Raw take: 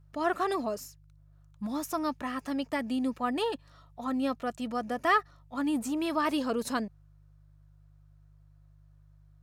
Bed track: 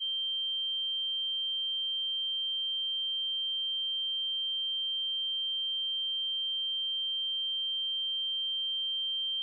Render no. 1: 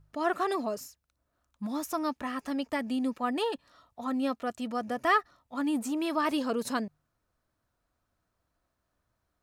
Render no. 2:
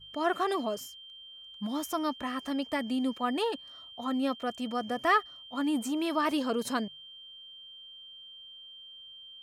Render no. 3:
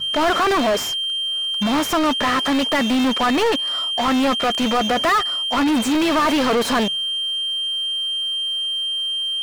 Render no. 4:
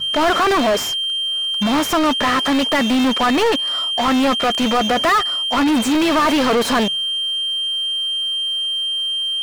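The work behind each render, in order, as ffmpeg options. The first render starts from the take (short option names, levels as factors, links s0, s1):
-af "bandreject=f=50:t=h:w=4,bandreject=f=100:t=h:w=4,bandreject=f=150:t=h:w=4"
-filter_complex "[1:a]volume=0.15[s0];[0:a][s0]amix=inputs=2:normalize=0"
-filter_complex "[0:a]asplit=2[s0][s1];[s1]acrusher=bits=3:mode=log:mix=0:aa=0.000001,volume=0.596[s2];[s0][s2]amix=inputs=2:normalize=0,asplit=2[s3][s4];[s4]highpass=f=720:p=1,volume=56.2,asoftclip=type=tanh:threshold=0.299[s5];[s3][s5]amix=inputs=2:normalize=0,lowpass=f=2500:p=1,volume=0.501"
-af "volume=1.26"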